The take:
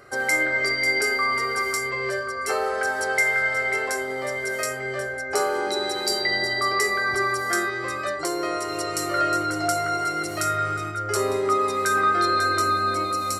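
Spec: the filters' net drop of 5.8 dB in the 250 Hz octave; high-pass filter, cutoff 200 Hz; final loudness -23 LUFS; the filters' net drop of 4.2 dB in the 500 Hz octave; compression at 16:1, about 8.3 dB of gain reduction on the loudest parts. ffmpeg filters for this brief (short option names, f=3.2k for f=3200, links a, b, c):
-af "highpass=200,equalizer=f=250:t=o:g=-6.5,equalizer=f=500:t=o:g=-3,acompressor=threshold=-26dB:ratio=16,volume=6dB"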